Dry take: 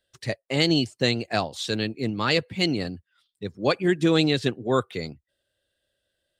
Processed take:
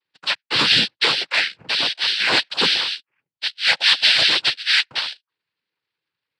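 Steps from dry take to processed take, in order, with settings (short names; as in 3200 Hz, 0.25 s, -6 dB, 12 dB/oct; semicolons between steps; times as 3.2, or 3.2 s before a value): inverted band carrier 3200 Hz; sample leveller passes 2; noise vocoder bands 8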